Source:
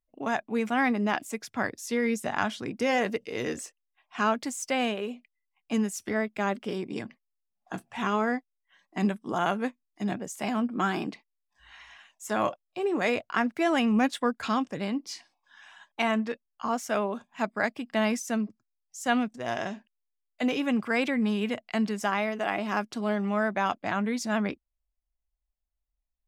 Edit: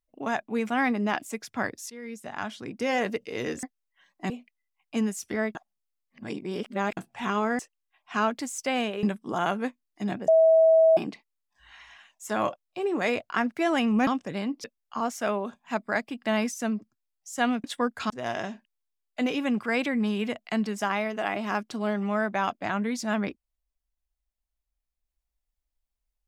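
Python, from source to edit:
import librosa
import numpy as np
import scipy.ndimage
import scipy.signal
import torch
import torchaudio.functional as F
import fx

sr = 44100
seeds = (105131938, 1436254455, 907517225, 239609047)

y = fx.edit(x, sr, fx.fade_in_from(start_s=1.9, length_s=1.16, floor_db=-18.5),
    fx.swap(start_s=3.63, length_s=1.44, other_s=8.36, other_length_s=0.67),
    fx.reverse_span(start_s=6.32, length_s=1.42),
    fx.bleep(start_s=10.28, length_s=0.69, hz=647.0, db=-14.5),
    fx.move(start_s=14.07, length_s=0.46, to_s=19.32),
    fx.cut(start_s=15.1, length_s=1.22), tone=tone)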